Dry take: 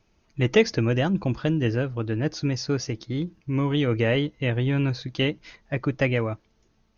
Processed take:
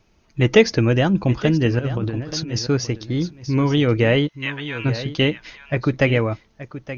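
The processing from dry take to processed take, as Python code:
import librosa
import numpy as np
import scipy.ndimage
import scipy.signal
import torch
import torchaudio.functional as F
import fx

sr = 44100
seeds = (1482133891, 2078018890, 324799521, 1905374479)

y = fx.over_compress(x, sr, threshold_db=-29.0, ratio=-0.5, at=(1.79, 2.59))
y = fx.highpass(y, sr, hz=1000.0, slope=24, at=(4.27, 4.84), fade=0.02)
y = y + 10.0 ** (-13.5 / 20.0) * np.pad(y, (int(876 * sr / 1000.0), 0))[:len(y)]
y = F.gain(torch.from_numpy(y), 5.5).numpy()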